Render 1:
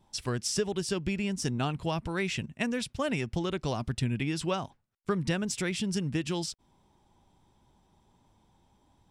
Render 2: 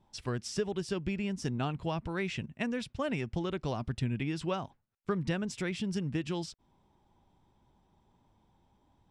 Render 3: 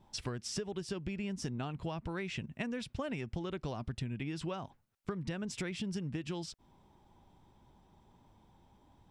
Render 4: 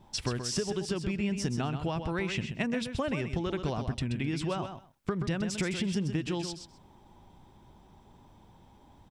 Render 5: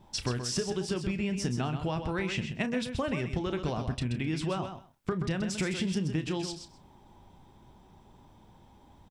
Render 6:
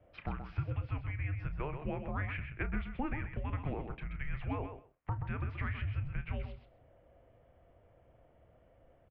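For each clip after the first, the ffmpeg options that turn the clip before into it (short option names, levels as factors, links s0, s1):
-af "aemphasis=mode=reproduction:type=50kf,volume=0.75"
-af "acompressor=threshold=0.01:ratio=6,volume=1.68"
-af "aecho=1:1:129|258:0.398|0.0597,volume=2.11"
-filter_complex "[0:a]asplit=2[s0][s1];[s1]adelay=32,volume=0.266[s2];[s0][s2]amix=inputs=2:normalize=0"
-af "highpass=f=180:t=q:w=0.5412,highpass=f=180:t=q:w=1.307,lowpass=f=2700:t=q:w=0.5176,lowpass=f=2700:t=q:w=0.7071,lowpass=f=2700:t=q:w=1.932,afreqshift=-290,volume=0.668"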